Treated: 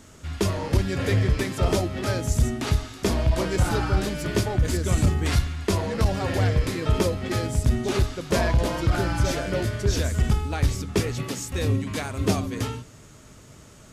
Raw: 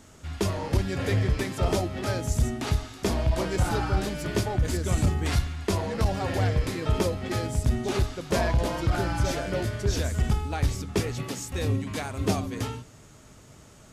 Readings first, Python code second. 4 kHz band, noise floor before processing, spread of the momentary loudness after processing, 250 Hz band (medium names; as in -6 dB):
+3.0 dB, -51 dBFS, 4 LU, +3.0 dB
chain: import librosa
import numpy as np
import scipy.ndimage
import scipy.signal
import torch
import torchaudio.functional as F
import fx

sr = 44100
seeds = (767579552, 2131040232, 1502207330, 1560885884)

y = fx.peak_eq(x, sr, hz=780.0, db=-3.5, octaves=0.44)
y = y * 10.0 ** (3.0 / 20.0)